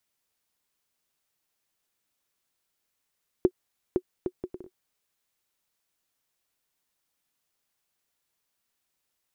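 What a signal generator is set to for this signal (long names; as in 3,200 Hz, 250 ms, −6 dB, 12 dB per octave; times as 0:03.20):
bouncing ball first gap 0.51 s, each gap 0.59, 365 Hz, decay 61 ms −9 dBFS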